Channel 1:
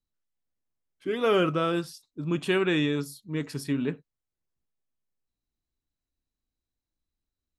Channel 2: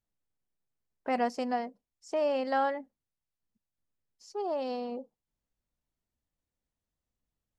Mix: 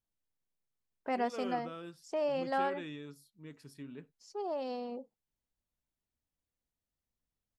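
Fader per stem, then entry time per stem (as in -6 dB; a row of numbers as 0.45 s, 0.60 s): -19.0 dB, -4.0 dB; 0.10 s, 0.00 s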